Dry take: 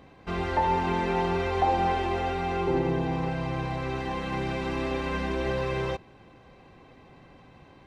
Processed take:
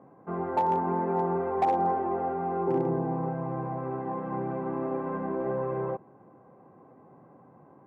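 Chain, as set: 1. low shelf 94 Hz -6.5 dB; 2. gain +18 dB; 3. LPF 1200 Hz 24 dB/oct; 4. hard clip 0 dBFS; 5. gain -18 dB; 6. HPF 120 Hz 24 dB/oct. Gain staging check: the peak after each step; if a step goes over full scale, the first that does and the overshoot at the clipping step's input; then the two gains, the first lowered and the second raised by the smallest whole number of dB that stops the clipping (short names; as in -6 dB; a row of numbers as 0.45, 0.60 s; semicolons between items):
-13.5, +4.5, +4.0, 0.0, -18.0, -15.0 dBFS; step 2, 4.0 dB; step 2 +14 dB, step 5 -14 dB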